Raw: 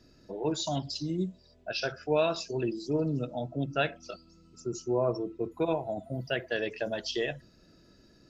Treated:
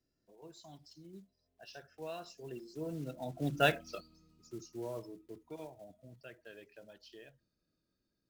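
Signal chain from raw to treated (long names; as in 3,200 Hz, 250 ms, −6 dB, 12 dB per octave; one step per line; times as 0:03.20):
one scale factor per block 5 bits
source passing by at 0:03.71, 15 m/s, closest 3.1 metres
level +1 dB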